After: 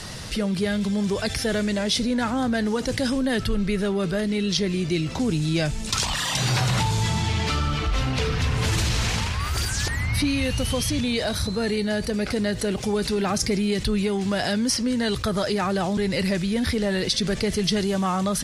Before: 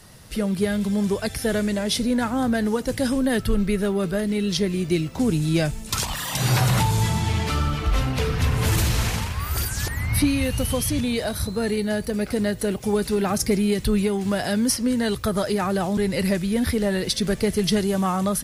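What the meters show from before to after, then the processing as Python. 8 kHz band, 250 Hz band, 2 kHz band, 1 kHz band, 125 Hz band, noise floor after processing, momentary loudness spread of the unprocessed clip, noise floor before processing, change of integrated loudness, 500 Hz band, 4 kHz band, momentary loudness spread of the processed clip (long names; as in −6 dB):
−0.5 dB, −1.5 dB, +1.0 dB, −0.5 dB, −1.5 dB, −30 dBFS, 4 LU, −35 dBFS, −1.0 dB, −1.5 dB, +3.0 dB, 3 LU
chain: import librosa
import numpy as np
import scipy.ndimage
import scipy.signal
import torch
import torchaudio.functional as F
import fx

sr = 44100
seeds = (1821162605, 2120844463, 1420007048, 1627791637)

y = scipy.signal.sosfilt(scipy.signal.butter(2, 5900.0, 'lowpass', fs=sr, output='sos'), x)
y = fx.high_shelf(y, sr, hz=2900.0, db=8.0)
y = fx.env_flatten(y, sr, amount_pct=50)
y = y * librosa.db_to_amplitude(-4.5)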